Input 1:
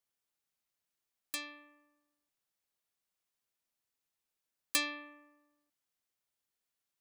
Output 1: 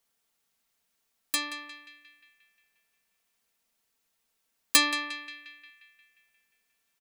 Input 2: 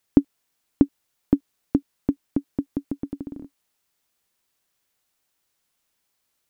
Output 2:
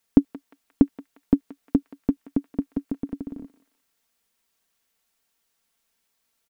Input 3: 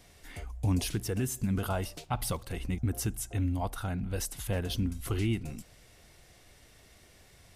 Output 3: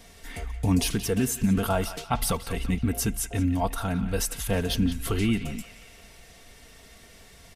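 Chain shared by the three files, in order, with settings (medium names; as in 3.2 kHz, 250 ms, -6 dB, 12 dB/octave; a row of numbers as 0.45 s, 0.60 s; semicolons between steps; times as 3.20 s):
comb 4.4 ms, depth 45%; band-passed feedback delay 177 ms, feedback 61%, band-pass 2.2 kHz, level -10 dB; normalise loudness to -27 LUFS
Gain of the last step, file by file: +10.0 dB, -0.5 dB, +6.0 dB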